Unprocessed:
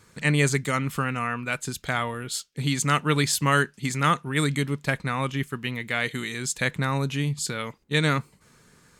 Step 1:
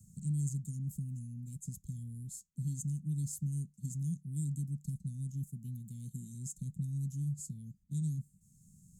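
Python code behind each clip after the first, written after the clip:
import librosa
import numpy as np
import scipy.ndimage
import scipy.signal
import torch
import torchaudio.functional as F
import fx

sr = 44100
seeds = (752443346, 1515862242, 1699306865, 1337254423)

y = scipy.signal.sosfilt(scipy.signal.cheby1(4, 1.0, [190.0, 6900.0], 'bandstop', fs=sr, output='sos'), x)
y = fx.bass_treble(y, sr, bass_db=-9, treble_db=-14)
y = fx.band_squash(y, sr, depth_pct=40)
y = y * librosa.db_to_amplitude(1.0)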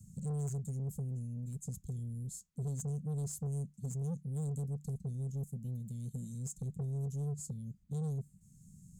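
y = fx.high_shelf(x, sr, hz=5300.0, db=-6.0)
y = 10.0 ** (-38.0 / 20.0) * np.tanh(y / 10.0 ** (-38.0 / 20.0))
y = y * librosa.db_to_amplitude(4.5)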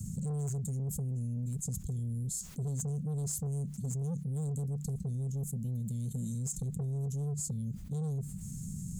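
y = fx.env_flatten(x, sr, amount_pct=70)
y = y * librosa.db_to_amplitude(1.5)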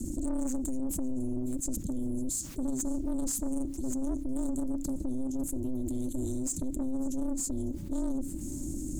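y = x * np.sin(2.0 * np.pi * 130.0 * np.arange(len(x)) / sr)
y = 10.0 ** (-31.0 / 20.0) * np.tanh(y / 10.0 ** (-31.0 / 20.0))
y = fx.echo_feedback(y, sr, ms=552, feedback_pct=52, wet_db=-20.5)
y = y * librosa.db_to_amplitude(8.0)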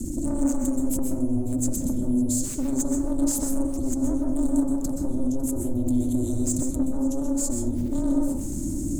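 y = fx.rev_plate(x, sr, seeds[0], rt60_s=0.77, hf_ratio=0.3, predelay_ms=115, drr_db=0.0)
y = y * librosa.db_to_amplitude(5.0)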